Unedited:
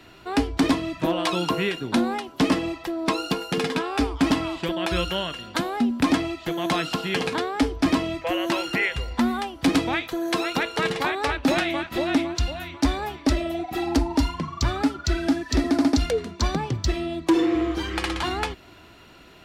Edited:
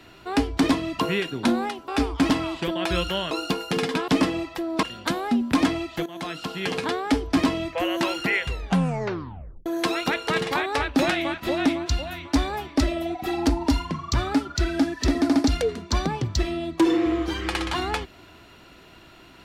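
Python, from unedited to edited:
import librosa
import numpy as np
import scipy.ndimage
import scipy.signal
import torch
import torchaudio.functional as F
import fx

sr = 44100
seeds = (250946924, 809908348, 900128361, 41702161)

y = fx.edit(x, sr, fx.cut(start_s=0.99, length_s=0.49),
    fx.swap(start_s=2.37, length_s=0.75, other_s=3.89, other_length_s=1.43),
    fx.fade_in_from(start_s=6.55, length_s=0.88, floor_db=-14.0),
    fx.tape_stop(start_s=8.98, length_s=1.17), tone=tone)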